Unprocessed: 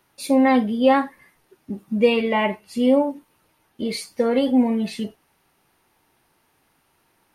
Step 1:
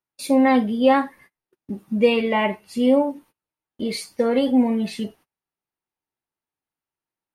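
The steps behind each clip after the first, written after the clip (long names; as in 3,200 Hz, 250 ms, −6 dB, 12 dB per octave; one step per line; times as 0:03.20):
noise gate −47 dBFS, range −28 dB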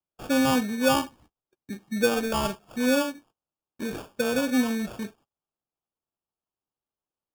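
hollow resonant body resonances 1,200/2,700 Hz, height 8 dB
decimation without filtering 22×
level −6 dB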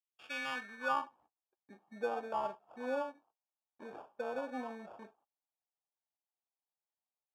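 band-pass filter sweep 3,000 Hz → 800 Hz, 0:00.14–0:01.23
level −4 dB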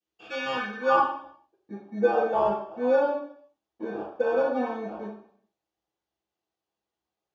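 convolution reverb RT60 0.60 s, pre-delay 3 ms, DRR −12.5 dB
level −6.5 dB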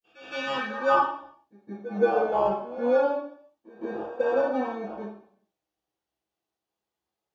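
echo ahead of the sound 167 ms −16 dB
pitch vibrato 0.3 Hz 53 cents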